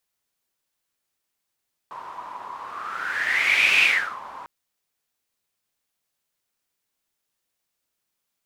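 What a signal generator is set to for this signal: whoosh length 2.55 s, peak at 1.91 s, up 1.41 s, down 0.41 s, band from 1 kHz, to 2.5 kHz, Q 9.3, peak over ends 19.5 dB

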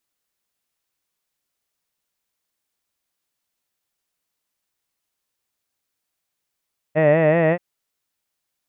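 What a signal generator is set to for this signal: formant vowel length 0.63 s, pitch 150 Hz, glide +2 st, F1 590 Hz, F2 1.9 kHz, F3 2.6 kHz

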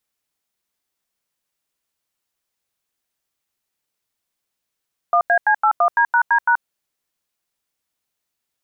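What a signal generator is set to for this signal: DTMF "1AC81D#D#", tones 80 ms, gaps 88 ms, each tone -14.5 dBFS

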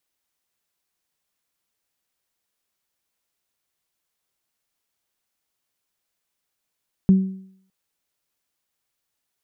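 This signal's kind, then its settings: additive tone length 0.61 s, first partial 190 Hz, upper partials -19.5 dB, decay 0.62 s, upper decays 0.61 s, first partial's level -8 dB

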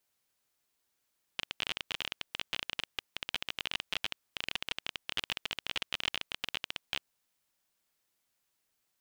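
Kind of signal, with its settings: random clicks 26 per s -16 dBFS 5.64 s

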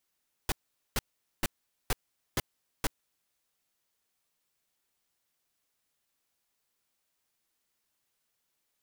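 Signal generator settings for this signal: noise bursts pink, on 0.03 s, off 0.44 s, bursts 6, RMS -27.5 dBFS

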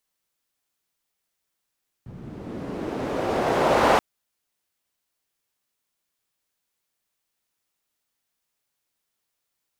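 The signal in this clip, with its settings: swept filtered noise pink, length 1.93 s bandpass, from 110 Hz, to 740 Hz, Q 1.3, linear, gain ramp +24 dB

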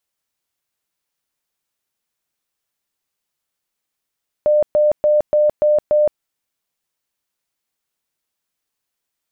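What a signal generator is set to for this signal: tone bursts 600 Hz, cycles 100, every 0.29 s, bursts 6, -10.5 dBFS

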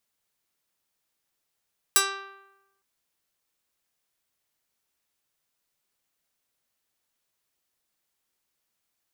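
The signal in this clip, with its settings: plucked string G4, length 0.86 s, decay 0.99 s, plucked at 0.18, medium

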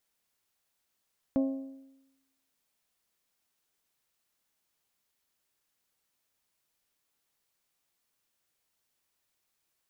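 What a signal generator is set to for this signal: metal hit bell, lowest mode 269 Hz, modes 5, decay 0.96 s, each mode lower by 8 dB, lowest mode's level -22 dB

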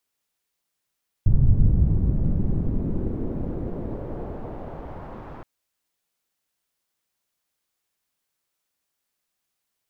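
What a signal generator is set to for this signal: swept filtered noise pink, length 4.17 s lowpass, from 110 Hz, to 1.1 kHz, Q 1.2, exponential, gain ramp -26 dB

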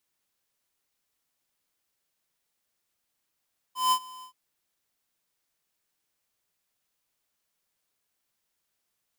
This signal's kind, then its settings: ADSR square 1.02 kHz, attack 167 ms, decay 70 ms, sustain -23 dB, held 0.48 s, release 95 ms -21 dBFS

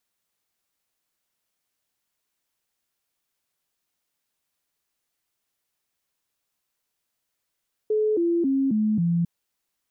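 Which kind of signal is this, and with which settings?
stepped sine 429 Hz down, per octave 3, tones 5, 0.27 s, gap 0.00 s -19 dBFS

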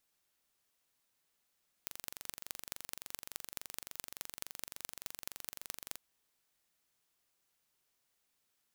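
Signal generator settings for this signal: pulse train 23.5 per s, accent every 5, -11 dBFS 4.09 s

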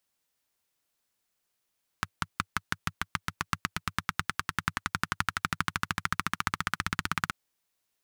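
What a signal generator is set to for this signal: single-cylinder engine model, changing speed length 5.28 s, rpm 600, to 2000, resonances 99/160/1300 Hz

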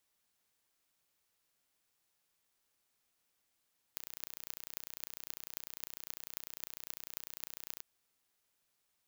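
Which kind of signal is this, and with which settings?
pulse train 30 per s, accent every 8, -11 dBFS 3.85 s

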